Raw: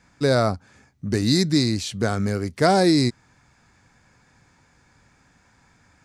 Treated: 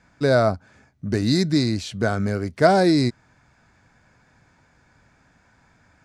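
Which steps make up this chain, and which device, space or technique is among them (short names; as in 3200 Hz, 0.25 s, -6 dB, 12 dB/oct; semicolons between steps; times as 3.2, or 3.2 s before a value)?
inside a helmet (high shelf 5500 Hz -8.5 dB; small resonant body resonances 640/1500 Hz, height 7 dB)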